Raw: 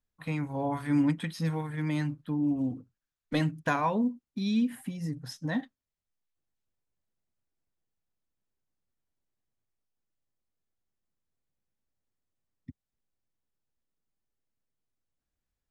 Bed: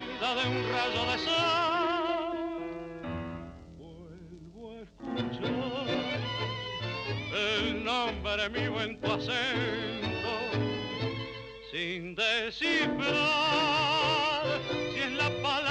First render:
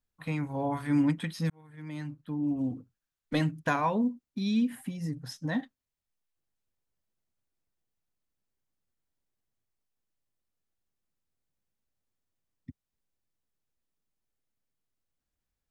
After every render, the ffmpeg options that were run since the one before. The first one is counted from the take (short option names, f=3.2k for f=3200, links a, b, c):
-filter_complex "[0:a]asplit=2[a][b];[a]atrim=end=1.5,asetpts=PTS-STARTPTS,afade=t=out:st=1.496:d=0.004:c=hsin[c];[b]atrim=start=1.5,asetpts=PTS-STARTPTS,afade=t=in:d=1.23[d];[c][d]concat=n=2:v=0:a=1"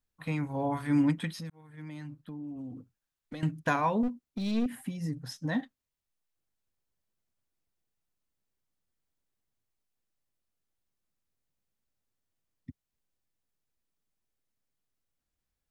-filter_complex "[0:a]asettb=1/sr,asplit=3[a][b][c];[a]atrim=end=1.324[d];[b]atrim=start=1.32:end=3.43,asetpts=PTS-STARTPTS,afade=t=in:d=0.004:c=qsin,afade=t=out:st=2.106:d=0.004:c=qsin,acompressor=threshold=-38dB:ratio=6:attack=3.2:release=140:knee=1:detection=peak[e];[c]atrim=start=3.426[f];[d][e]acrossfade=d=0.004:c1=hsin:c2=qsin[g];[g][f]acrossfade=d=0.004:c1=qsin:c2=hsin,asettb=1/sr,asplit=3[h][i][j];[h]atrim=end=4.034[k];[i]atrim=start=4.03:end=4.66,asetpts=PTS-STARTPTS,afade=t=in:d=0.004:c=qsin,afade=t=out:st=0.626:d=0.004:c=qsin,aeval=exprs='clip(val(0),-1,0.0251)':c=same[l];[j]atrim=start=4.656[m];[k][l]acrossfade=d=0.004:c1=hsin:c2=qsin[n];[n][m]acrossfade=d=0.004:c1=qsin:c2=hsin"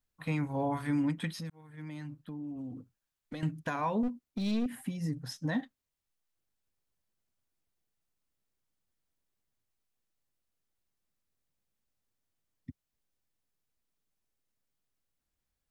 -af "alimiter=limit=-23dB:level=0:latency=1:release=166"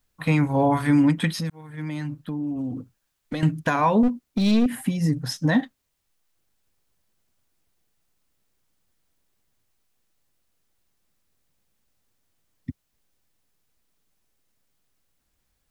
-af "volume=12dB"